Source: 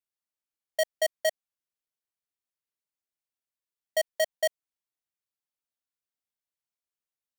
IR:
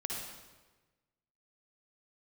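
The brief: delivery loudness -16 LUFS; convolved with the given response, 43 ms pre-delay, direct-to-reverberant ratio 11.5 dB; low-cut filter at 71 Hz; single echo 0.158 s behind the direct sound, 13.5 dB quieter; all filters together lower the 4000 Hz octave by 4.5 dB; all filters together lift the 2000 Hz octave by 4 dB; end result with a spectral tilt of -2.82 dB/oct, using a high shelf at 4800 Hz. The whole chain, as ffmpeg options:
-filter_complex "[0:a]highpass=71,equalizer=f=2k:t=o:g=6,equalizer=f=4k:t=o:g=-5,highshelf=f=4.8k:g=-8,aecho=1:1:158:0.211,asplit=2[a][b];[1:a]atrim=start_sample=2205,adelay=43[c];[b][c]afir=irnorm=-1:irlink=0,volume=-13.5dB[d];[a][d]amix=inputs=2:normalize=0,volume=14dB"

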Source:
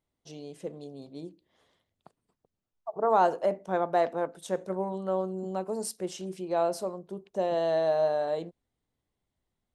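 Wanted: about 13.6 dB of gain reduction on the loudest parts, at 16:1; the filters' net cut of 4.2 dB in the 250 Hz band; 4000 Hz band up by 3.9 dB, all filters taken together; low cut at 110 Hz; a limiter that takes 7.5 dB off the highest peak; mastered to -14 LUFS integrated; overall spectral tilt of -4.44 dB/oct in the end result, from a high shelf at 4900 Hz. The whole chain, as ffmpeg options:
-af "highpass=110,equalizer=f=250:t=o:g=-7,equalizer=f=4k:t=o:g=7.5,highshelf=f=4.9k:g=-6,acompressor=threshold=-32dB:ratio=16,volume=27dB,alimiter=limit=-3.5dB:level=0:latency=1"

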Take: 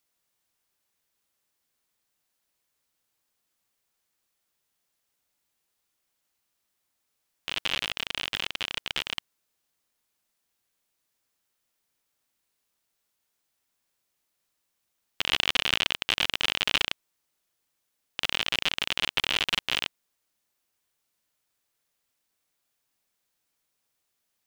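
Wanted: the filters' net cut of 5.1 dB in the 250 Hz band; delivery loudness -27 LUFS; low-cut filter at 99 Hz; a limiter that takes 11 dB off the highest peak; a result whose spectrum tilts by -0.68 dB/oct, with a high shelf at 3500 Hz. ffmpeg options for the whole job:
-af "highpass=99,equalizer=f=250:t=o:g=-7,highshelf=f=3.5k:g=7.5,volume=4.5dB,alimiter=limit=-9dB:level=0:latency=1"

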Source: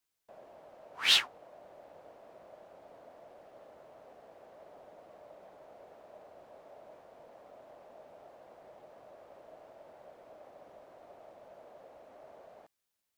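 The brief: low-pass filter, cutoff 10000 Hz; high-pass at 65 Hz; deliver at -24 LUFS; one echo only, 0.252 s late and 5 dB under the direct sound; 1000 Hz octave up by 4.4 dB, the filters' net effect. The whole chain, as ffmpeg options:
-af "highpass=65,lowpass=10k,equalizer=f=1k:t=o:g=6,aecho=1:1:252:0.562,volume=2.5dB"

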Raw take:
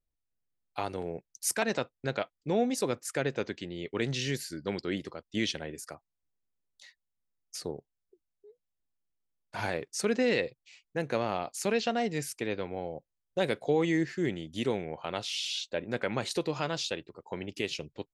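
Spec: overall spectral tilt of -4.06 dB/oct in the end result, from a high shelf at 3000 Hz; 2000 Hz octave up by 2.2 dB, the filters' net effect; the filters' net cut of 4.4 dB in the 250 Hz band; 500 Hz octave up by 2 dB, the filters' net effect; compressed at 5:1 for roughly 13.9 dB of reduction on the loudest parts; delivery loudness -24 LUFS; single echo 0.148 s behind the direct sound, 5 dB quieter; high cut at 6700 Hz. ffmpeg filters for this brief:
-af "lowpass=6.7k,equalizer=f=250:t=o:g=-8,equalizer=f=500:t=o:g=4.5,equalizer=f=2k:t=o:g=5.5,highshelf=f=3k:g=-8,acompressor=threshold=-38dB:ratio=5,aecho=1:1:148:0.562,volume=17.5dB"

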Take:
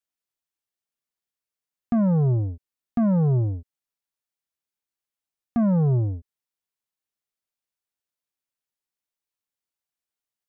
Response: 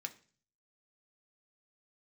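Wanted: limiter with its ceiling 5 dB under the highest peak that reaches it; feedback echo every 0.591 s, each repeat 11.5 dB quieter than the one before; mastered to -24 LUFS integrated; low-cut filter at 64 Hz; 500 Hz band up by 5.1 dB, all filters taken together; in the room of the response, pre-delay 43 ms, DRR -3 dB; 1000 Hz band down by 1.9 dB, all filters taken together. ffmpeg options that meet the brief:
-filter_complex "[0:a]highpass=64,equalizer=f=500:t=o:g=8.5,equalizer=f=1k:t=o:g=-8.5,alimiter=limit=-17.5dB:level=0:latency=1,aecho=1:1:591|1182|1773:0.266|0.0718|0.0194,asplit=2[a][b];[1:a]atrim=start_sample=2205,adelay=43[c];[b][c]afir=irnorm=-1:irlink=0,volume=5dB[d];[a][d]amix=inputs=2:normalize=0,volume=0.5dB"

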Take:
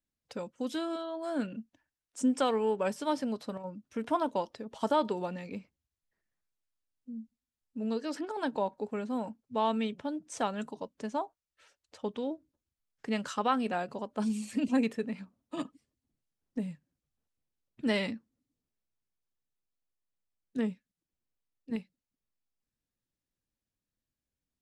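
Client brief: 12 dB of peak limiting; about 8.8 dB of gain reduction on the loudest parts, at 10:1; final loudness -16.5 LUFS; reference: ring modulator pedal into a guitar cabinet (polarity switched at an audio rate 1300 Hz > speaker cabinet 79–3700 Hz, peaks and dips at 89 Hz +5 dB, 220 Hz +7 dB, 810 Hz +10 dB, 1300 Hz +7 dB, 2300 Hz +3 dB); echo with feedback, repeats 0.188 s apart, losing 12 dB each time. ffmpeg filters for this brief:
-af "acompressor=threshold=-31dB:ratio=10,alimiter=level_in=7.5dB:limit=-24dB:level=0:latency=1,volume=-7.5dB,aecho=1:1:188|376|564:0.251|0.0628|0.0157,aeval=exprs='val(0)*sgn(sin(2*PI*1300*n/s))':c=same,highpass=79,equalizer=f=89:t=q:w=4:g=5,equalizer=f=220:t=q:w=4:g=7,equalizer=f=810:t=q:w=4:g=10,equalizer=f=1.3k:t=q:w=4:g=7,equalizer=f=2.3k:t=q:w=4:g=3,lowpass=f=3.7k:w=0.5412,lowpass=f=3.7k:w=1.3066,volume=21dB"

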